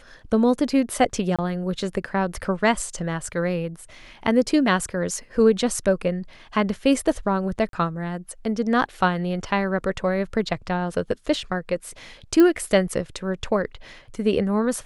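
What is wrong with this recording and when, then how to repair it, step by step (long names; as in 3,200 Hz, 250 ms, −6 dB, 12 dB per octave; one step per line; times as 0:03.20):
0:01.36–0:01.39: drop-out 26 ms
0:07.69–0:07.73: drop-out 42 ms
0:12.40: click −8 dBFS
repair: click removal
repair the gap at 0:01.36, 26 ms
repair the gap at 0:07.69, 42 ms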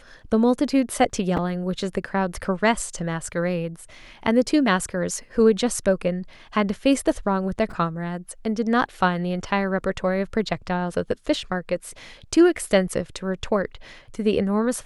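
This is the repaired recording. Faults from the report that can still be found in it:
none of them is left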